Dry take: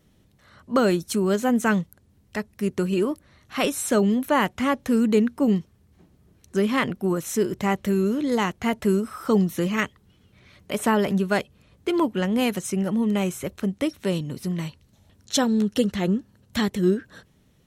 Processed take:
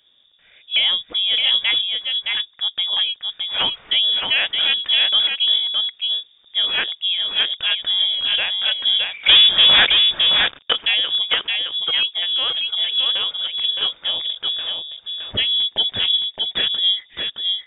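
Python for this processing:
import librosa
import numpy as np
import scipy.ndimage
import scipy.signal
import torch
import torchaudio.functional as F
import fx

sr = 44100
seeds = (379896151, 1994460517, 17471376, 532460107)

p1 = fx.leveller(x, sr, passes=5, at=(9.26, 10.73))
p2 = fx.air_absorb(p1, sr, metres=240.0, at=(11.95, 12.74))
p3 = p2 + fx.echo_single(p2, sr, ms=617, db=-4.0, dry=0)
p4 = fx.freq_invert(p3, sr, carrier_hz=3600)
y = p4 * librosa.db_to_amplitude(1.5)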